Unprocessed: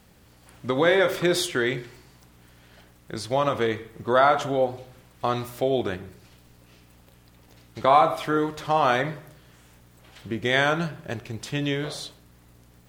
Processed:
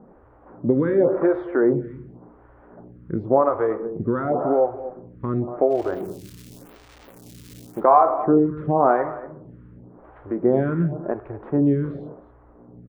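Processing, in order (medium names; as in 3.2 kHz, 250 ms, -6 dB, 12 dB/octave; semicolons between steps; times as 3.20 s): low-pass 1.3 kHz 24 dB/octave; peaking EQ 300 Hz +7.5 dB 2.2 oct; in parallel at +2 dB: compression, threshold -26 dBFS, peak gain reduction 15.5 dB; 5.70–7.80 s: on the sum: crackle 480 per s -32 dBFS; on a send: delay 233 ms -16 dB; on the sum: lamp-driven phase shifter 0.91 Hz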